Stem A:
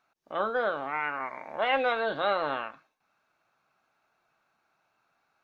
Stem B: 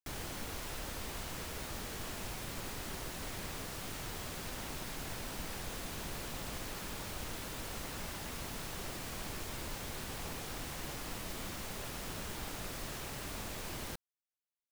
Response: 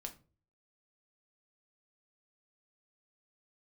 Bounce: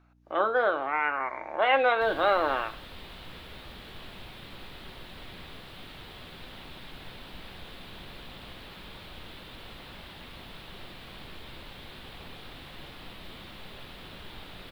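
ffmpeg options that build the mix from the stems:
-filter_complex "[0:a]bass=f=250:g=-14,treble=f=4000:g=-8,aeval=exprs='val(0)+0.000562*(sin(2*PI*60*n/s)+sin(2*PI*2*60*n/s)/2+sin(2*PI*3*60*n/s)/3+sin(2*PI*4*60*n/s)/4+sin(2*PI*5*60*n/s)/5)':c=same,equalizer=f=330:w=5:g=8.5,volume=1.26,asplit=2[s0][s1];[s1]volume=0.398[s2];[1:a]highshelf=f=4800:t=q:w=3:g=-10,adelay=1950,volume=0.473,asplit=2[s3][s4];[s4]volume=0.75[s5];[2:a]atrim=start_sample=2205[s6];[s2][s5]amix=inputs=2:normalize=0[s7];[s7][s6]afir=irnorm=-1:irlink=0[s8];[s0][s3][s8]amix=inputs=3:normalize=0"

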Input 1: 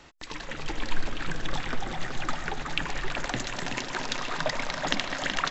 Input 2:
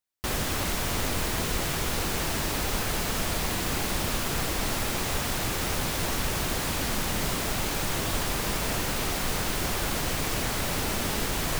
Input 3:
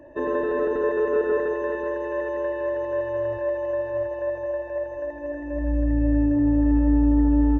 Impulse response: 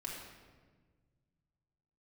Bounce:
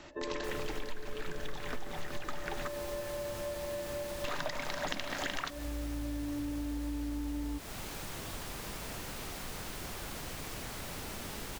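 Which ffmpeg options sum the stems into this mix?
-filter_complex "[0:a]volume=0.841,asplit=3[s0][s1][s2];[s0]atrim=end=2.68,asetpts=PTS-STARTPTS,afade=t=out:st=2.676:d=0.004:c=hsin[s3];[s1]atrim=start=2.68:end=4.24,asetpts=PTS-STARTPTS,volume=0[s4];[s2]atrim=start=4.24,asetpts=PTS-STARTPTS,afade=t=in:d=0.004:c=hsin[s5];[s3][s4][s5]concat=n=3:v=0:a=1,asplit=2[s6][s7];[s7]volume=0.2[s8];[1:a]adelay=200,volume=0.237[s9];[2:a]volume=0.335[s10];[s9][s10]amix=inputs=2:normalize=0,acompressor=threshold=0.0141:ratio=2,volume=1[s11];[3:a]atrim=start_sample=2205[s12];[s8][s12]afir=irnorm=-1:irlink=0[s13];[s6][s11][s13]amix=inputs=3:normalize=0,acompressor=threshold=0.0251:ratio=8"

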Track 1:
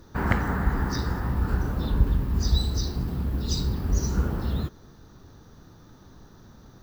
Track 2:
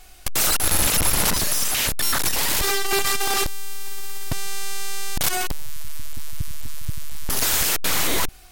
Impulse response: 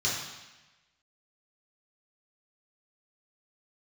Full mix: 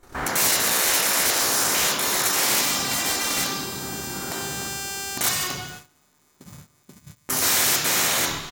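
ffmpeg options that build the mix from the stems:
-filter_complex "[0:a]asplit=2[s0][s1];[s1]highpass=f=720:p=1,volume=50.1,asoftclip=type=tanh:threshold=0.473[s2];[s0][s2]amix=inputs=2:normalize=0,lowpass=f=1700:p=1,volume=0.501,volume=0.266,afade=t=out:st=3.2:d=0.56:silence=0.354813,asplit=3[s3][s4][s5];[s4]volume=0.316[s6];[s5]volume=0.316[s7];[1:a]aeval=exprs='clip(val(0),-1,0.0631)':c=same,volume=1.12,asplit=2[s8][s9];[s9]volume=0.335[s10];[2:a]atrim=start_sample=2205[s11];[s6][s10]amix=inputs=2:normalize=0[s12];[s12][s11]afir=irnorm=-1:irlink=0[s13];[s7]aecho=0:1:597|1194|1791|2388|2985|3582|4179|4776:1|0.52|0.27|0.141|0.0731|0.038|0.0198|0.0103[s14];[s3][s8][s13][s14]amix=inputs=4:normalize=0,afftfilt=real='re*lt(hypot(re,im),0.224)':imag='im*lt(hypot(re,im),0.224)':win_size=1024:overlap=0.75,agate=range=0.112:threshold=0.0126:ratio=16:detection=peak"

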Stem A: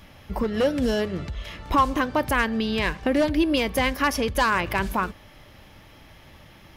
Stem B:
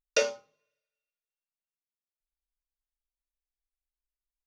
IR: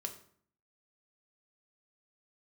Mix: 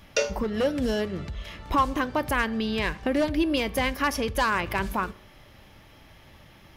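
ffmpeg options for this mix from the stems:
-filter_complex "[0:a]volume=0.596,asplit=2[s0][s1];[s1]volume=0.299[s2];[1:a]volume=0.75,asplit=2[s3][s4];[s4]volume=0.531[s5];[2:a]atrim=start_sample=2205[s6];[s2][s5]amix=inputs=2:normalize=0[s7];[s7][s6]afir=irnorm=-1:irlink=0[s8];[s0][s3][s8]amix=inputs=3:normalize=0"

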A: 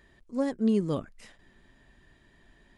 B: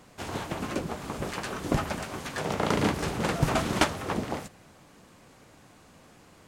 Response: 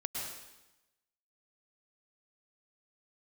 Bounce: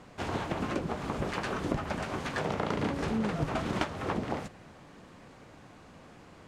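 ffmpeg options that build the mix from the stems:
-filter_complex "[0:a]lowshelf=f=120:t=q:w=3:g=-12,adelay=2500,volume=0.531[s0];[1:a]aemphasis=mode=reproduction:type=50fm,volume=1.33[s1];[s0][s1]amix=inputs=2:normalize=0,acompressor=threshold=0.0398:ratio=5"

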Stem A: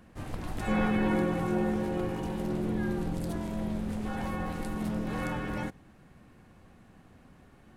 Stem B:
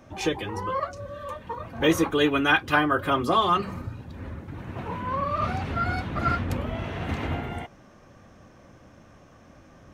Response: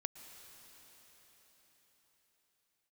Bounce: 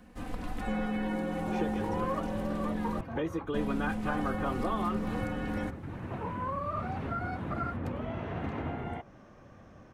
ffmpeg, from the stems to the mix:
-filter_complex "[0:a]aecho=1:1:4:0.69,acrossover=split=710|3400[s0][s1][s2];[s0]acompressor=threshold=0.0316:ratio=4[s3];[s1]acompressor=threshold=0.01:ratio=4[s4];[s2]acompressor=threshold=0.00126:ratio=4[s5];[s3][s4][s5]amix=inputs=3:normalize=0,volume=0.891,asplit=3[s6][s7][s8];[s6]atrim=end=3.01,asetpts=PTS-STARTPTS,afade=t=out:st=3.006:d=0.004:c=hsin[s9];[s7]atrim=start=3.01:end=3.54,asetpts=PTS-STARTPTS,volume=0[s10];[s8]atrim=start=3.54,asetpts=PTS-STARTPTS,afade=t=in:d=0.004:c=hsin[s11];[s9][s10][s11]concat=n=3:v=0:a=1[s12];[1:a]highshelf=f=3600:g=-9.5,acrossover=split=110|1700[s13][s14][s15];[s13]acompressor=threshold=0.00708:ratio=4[s16];[s14]acompressor=threshold=0.0282:ratio=4[s17];[s15]acompressor=threshold=0.00224:ratio=4[s18];[s16][s17][s18]amix=inputs=3:normalize=0,adelay=1350,volume=0.841[s19];[s12][s19]amix=inputs=2:normalize=0"

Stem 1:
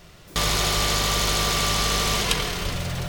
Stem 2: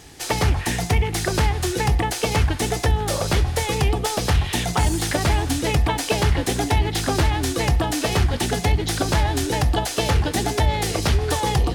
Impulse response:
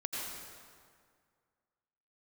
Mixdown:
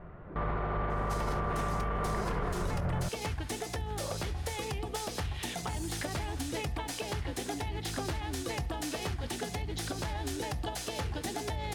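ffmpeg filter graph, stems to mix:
-filter_complex "[0:a]lowpass=f=1500:w=0.5412,lowpass=f=1500:w=1.3066,volume=1.19[s0];[1:a]bandreject=f=60:t=h:w=6,bandreject=f=120:t=h:w=6,bandreject=f=180:t=h:w=6,acompressor=threshold=0.0891:ratio=6,adelay=900,volume=0.316[s1];[s0][s1]amix=inputs=2:normalize=0,alimiter=limit=0.0631:level=0:latency=1:release=89"

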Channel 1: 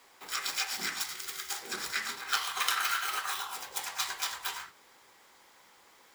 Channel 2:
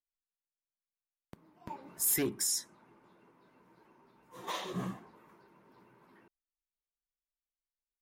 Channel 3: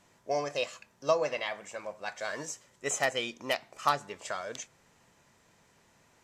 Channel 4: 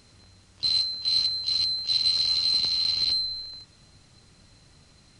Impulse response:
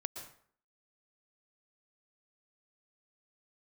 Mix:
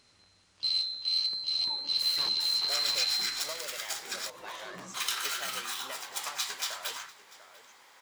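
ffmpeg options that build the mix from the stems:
-filter_complex "[0:a]acrossover=split=290|3000[s0][s1][s2];[s1]acompressor=threshold=0.00562:ratio=3[s3];[s0][s3][s2]amix=inputs=3:normalize=0,adelay=2400,volume=1,asplit=3[s4][s5][s6];[s4]atrim=end=4.3,asetpts=PTS-STARTPTS,afade=t=out:st=4.296:d=0.004:c=hsin[s7];[s5]atrim=start=4.3:end=4.94,asetpts=PTS-STARTPTS,volume=0[s8];[s6]atrim=start=4.94,asetpts=PTS-STARTPTS,afade=t=in:d=0.004:c=hsin[s9];[s7][s8][s9]concat=n=3:v=0:a=1,asplit=2[s10][s11];[s11]volume=0.075[s12];[1:a]aeval=exprs='(mod(23.7*val(0)+1,2)-1)/23.7':c=same,acompressor=threshold=0.00355:ratio=1.5,asoftclip=type=tanh:threshold=0.0133,volume=0.841,asplit=3[s13][s14][s15];[s14]volume=0.188[s16];[s15]volume=0.473[s17];[2:a]acompressor=threshold=0.0282:ratio=6,adelay=2400,volume=0.299,asplit=2[s18][s19];[s19]volume=0.251[s20];[3:a]volume=0.398[s21];[4:a]atrim=start_sample=2205[s22];[s16][s22]afir=irnorm=-1:irlink=0[s23];[s12][s17][s20]amix=inputs=3:normalize=0,aecho=0:1:693:1[s24];[s10][s13][s18][s21][s23][s24]amix=inputs=6:normalize=0,asplit=2[s25][s26];[s26]highpass=f=720:p=1,volume=4.47,asoftclip=type=tanh:threshold=0.473[s27];[s25][s27]amix=inputs=2:normalize=0,lowpass=f=6700:p=1,volume=0.501,flanger=delay=7.3:depth=5.6:regen=-74:speed=1.4:shape=triangular"

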